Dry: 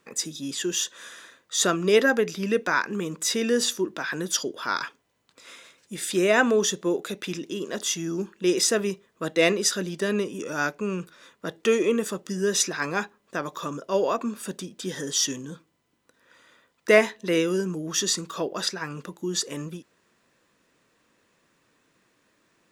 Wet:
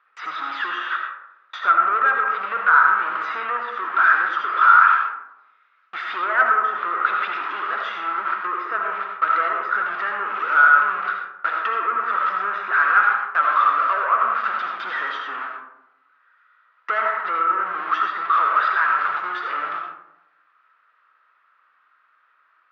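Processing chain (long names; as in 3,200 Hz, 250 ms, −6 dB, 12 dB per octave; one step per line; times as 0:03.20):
converter with a step at zero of −23 dBFS
noise gate with hold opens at −22 dBFS
treble cut that deepens with the level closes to 1,500 Hz, closed at −17 dBFS
leveller curve on the samples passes 3
four-pole ladder band-pass 1,400 Hz, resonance 75%
high-frequency loss of the air 250 metres
on a send: convolution reverb RT60 0.85 s, pre-delay 40 ms, DRR 2 dB
on the sum: level +4.5 dB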